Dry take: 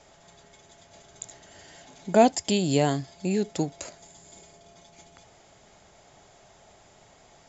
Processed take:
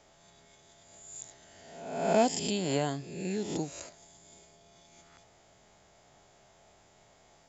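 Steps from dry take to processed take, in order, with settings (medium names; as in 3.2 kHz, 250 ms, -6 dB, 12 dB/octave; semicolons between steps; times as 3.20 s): reverse spectral sustain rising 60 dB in 0.97 s; trim -8.5 dB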